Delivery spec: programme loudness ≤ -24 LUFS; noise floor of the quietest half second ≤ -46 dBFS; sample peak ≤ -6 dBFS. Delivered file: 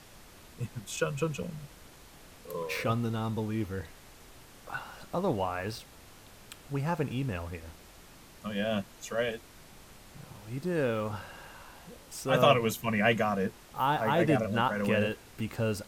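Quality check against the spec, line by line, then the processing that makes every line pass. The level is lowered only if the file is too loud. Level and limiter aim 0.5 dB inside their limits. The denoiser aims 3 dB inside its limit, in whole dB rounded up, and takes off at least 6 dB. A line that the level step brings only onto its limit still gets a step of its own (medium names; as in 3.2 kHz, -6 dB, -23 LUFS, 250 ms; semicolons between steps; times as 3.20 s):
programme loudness -31.0 LUFS: pass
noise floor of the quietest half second -53 dBFS: pass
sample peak -9.5 dBFS: pass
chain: none needed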